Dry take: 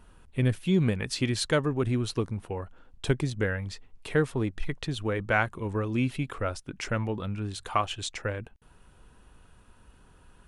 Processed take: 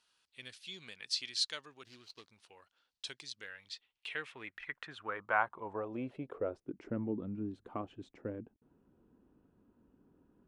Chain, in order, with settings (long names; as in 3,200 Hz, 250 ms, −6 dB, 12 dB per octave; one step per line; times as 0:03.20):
0:01.84–0:02.29: running median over 25 samples
band-pass filter sweep 4,600 Hz → 280 Hz, 0:03.51–0:06.95
level +1 dB